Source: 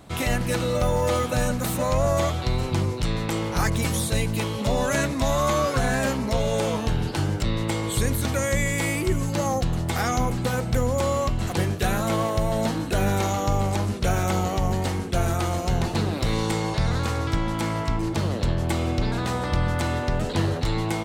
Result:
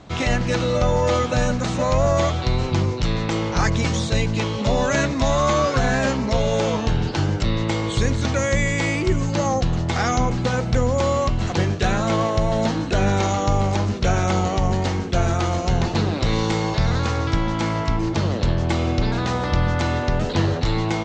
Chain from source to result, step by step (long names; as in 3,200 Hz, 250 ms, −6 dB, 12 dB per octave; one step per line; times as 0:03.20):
Butterworth low-pass 7,000 Hz 48 dB per octave
level +3.5 dB